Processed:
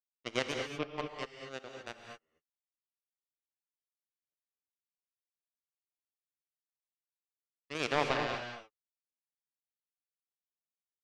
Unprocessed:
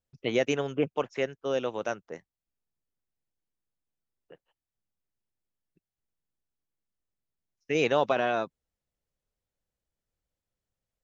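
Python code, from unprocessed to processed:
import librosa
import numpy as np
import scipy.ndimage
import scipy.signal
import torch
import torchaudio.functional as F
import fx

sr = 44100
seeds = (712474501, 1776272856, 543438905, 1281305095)

y = fx.power_curve(x, sr, exponent=3.0)
y = fx.rev_gated(y, sr, seeds[0], gate_ms=260, shape='rising', drr_db=3.5)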